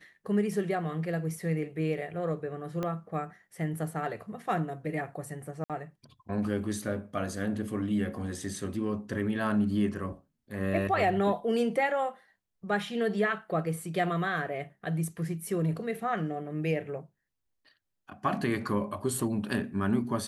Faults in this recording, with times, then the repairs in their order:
2.83 s: pop -20 dBFS
5.64–5.70 s: dropout 57 ms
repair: de-click; interpolate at 5.64 s, 57 ms

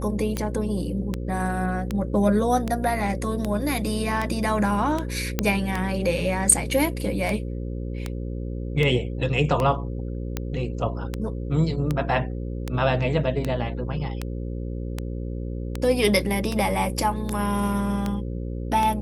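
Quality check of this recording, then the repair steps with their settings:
buzz 60 Hz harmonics 9 -30 dBFS
tick 78 rpm -12 dBFS
5.39 s: pop -6 dBFS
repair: de-click; de-hum 60 Hz, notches 9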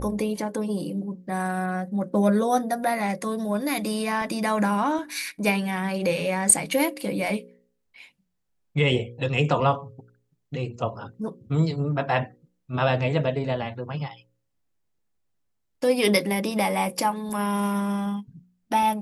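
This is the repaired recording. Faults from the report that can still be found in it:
nothing left

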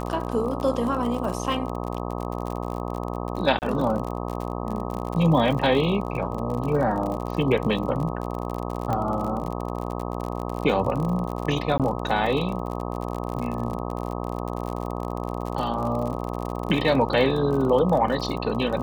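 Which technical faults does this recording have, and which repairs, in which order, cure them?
buzz 60 Hz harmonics 21 -30 dBFS
crackle 46 per s -29 dBFS
3.59–3.62 s: dropout 29 ms
8.93 s: pop -15 dBFS
11.78–11.80 s: dropout 17 ms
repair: de-click; de-hum 60 Hz, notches 21; interpolate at 3.59 s, 29 ms; interpolate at 11.78 s, 17 ms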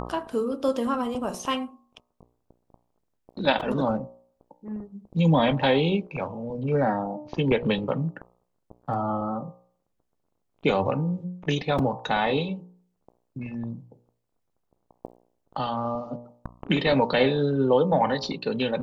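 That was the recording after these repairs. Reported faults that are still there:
8.93 s: pop

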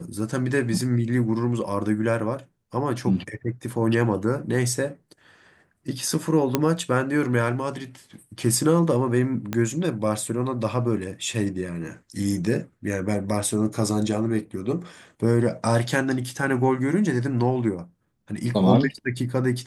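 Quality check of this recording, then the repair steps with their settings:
6.55 s: pop -5 dBFS
9.53 s: pop -12 dBFS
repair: de-click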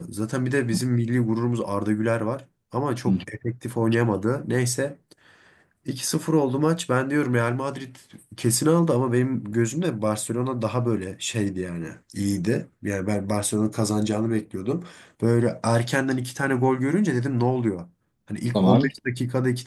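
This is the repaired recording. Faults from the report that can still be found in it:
6.55 s: pop
9.53 s: pop

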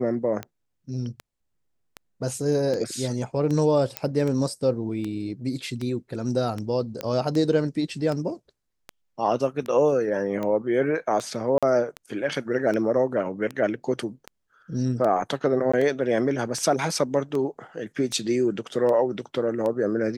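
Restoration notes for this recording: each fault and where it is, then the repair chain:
tick 78 rpm -18 dBFS
3.97 s: pop -9 dBFS
7.01 s: pop -15 dBFS
11.58–11.63 s: dropout 46 ms
15.72–15.73 s: dropout 15 ms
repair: de-click; interpolate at 11.58 s, 46 ms; interpolate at 15.72 s, 15 ms

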